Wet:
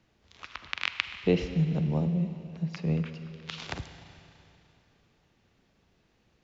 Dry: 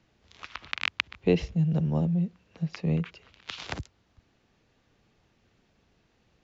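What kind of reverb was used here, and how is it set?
Schroeder reverb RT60 2.9 s, combs from 33 ms, DRR 9 dB; trim -1.5 dB

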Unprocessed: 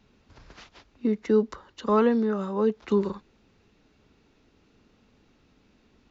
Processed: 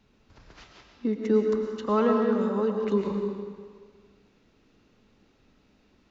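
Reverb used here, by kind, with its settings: algorithmic reverb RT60 1.7 s, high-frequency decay 0.9×, pre-delay 70 ms, DRR 2.5 dB; trim -2.5 dB

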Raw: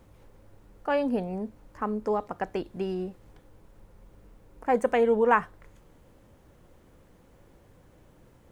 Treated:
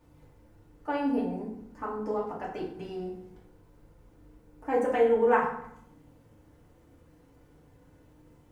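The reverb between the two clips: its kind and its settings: FDN reverb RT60 0.71 s, low-frequency decay 1.45×, high-frequency decay 0.7×, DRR -6 dB; trim -10 dB

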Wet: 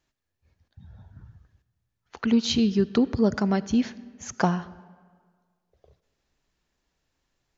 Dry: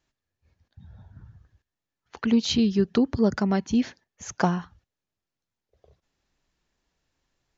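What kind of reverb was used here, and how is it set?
algorithmic reverb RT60 1.7 s, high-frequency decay 0.7×, pre-delay 10 ms, DRR 18 dB

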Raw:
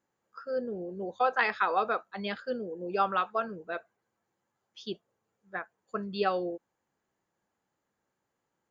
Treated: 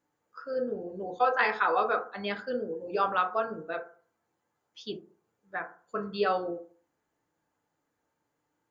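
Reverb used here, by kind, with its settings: FDN reverb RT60 0.43 s, low-frequency decay 1×, high-frequency decay 0.3×, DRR 3 dB

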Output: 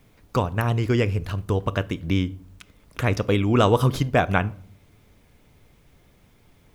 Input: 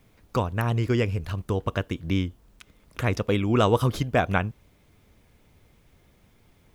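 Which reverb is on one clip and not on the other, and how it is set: simulated room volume 740 m³, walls furnished, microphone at 0.33 m; trim +2.5 dB

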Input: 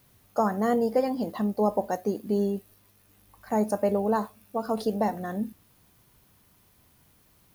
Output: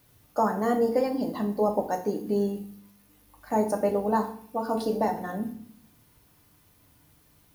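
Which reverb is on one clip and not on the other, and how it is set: FDN reverb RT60 0.56 s, low-frequency decay 1.5×, high-frequency decay 0.9×, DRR 4 dB; trim -1 dB

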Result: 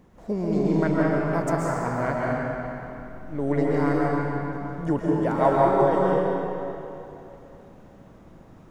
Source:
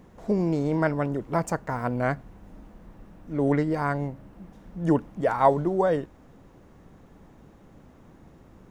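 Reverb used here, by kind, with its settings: algorithmic reverb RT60 3 s, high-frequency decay 0.8×, pre-delay 95 ms, DRR -5 dB; trim -3.5 dB

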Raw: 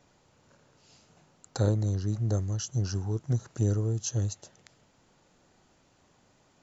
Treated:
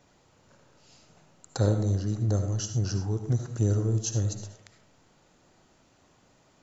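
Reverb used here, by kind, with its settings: algorithmic reverb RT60 0.58 s, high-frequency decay 0.4×, pre-delay 35 ms, DRR 7 dB; trim +1.5 dB

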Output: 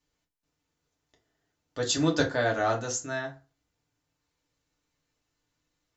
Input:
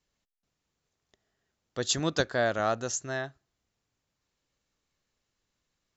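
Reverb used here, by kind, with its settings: FDN reverb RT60 0.31 s, low-frequency decay 1.1×, high-frequency decay 0.7×, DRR -1.5 dB; trim -2.5 dB

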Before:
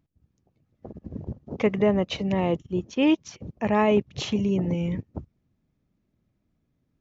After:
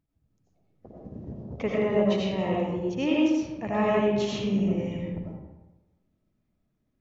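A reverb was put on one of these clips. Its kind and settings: algorithmic reverb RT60 1.1 s, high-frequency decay 0.6×, pre-delay 50 ms, DRR -5 dB; trim -7.5 dB

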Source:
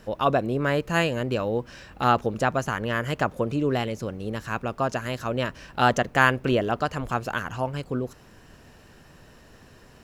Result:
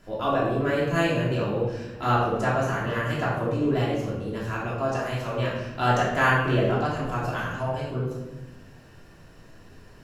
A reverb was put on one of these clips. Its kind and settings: simulated room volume 500 m³, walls mixed, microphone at 3 m; trim -8.5 dB

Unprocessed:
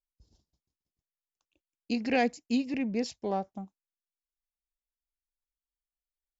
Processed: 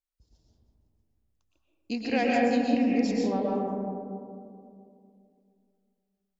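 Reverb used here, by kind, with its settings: algorithmic reverb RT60 2.5 s, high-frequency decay 0.25×, pre-delay 85 ms, DRR -4 dB; trim -1.5 dB

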